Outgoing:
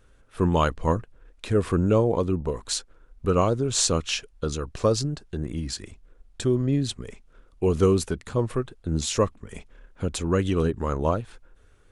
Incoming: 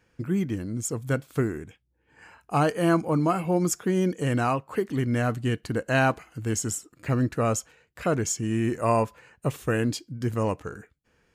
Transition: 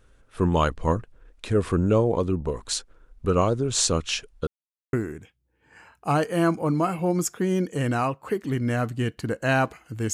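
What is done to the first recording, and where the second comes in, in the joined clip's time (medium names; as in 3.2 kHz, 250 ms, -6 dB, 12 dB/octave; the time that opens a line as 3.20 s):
outgoing
4.47–4.93 s: mute
4.93 s: go over to incoming from 1.39 s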